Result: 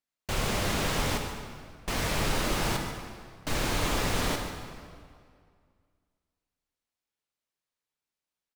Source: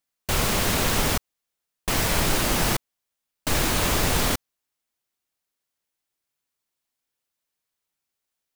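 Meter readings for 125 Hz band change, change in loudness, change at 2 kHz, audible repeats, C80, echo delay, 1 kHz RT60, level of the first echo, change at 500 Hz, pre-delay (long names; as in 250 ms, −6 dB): −4.5 dB, −7.0 dB, −5.0 dB, 1, 5.0 dB, 144 ms, 2.1 s, −11.5 dB, −4.5 dB, 12 ms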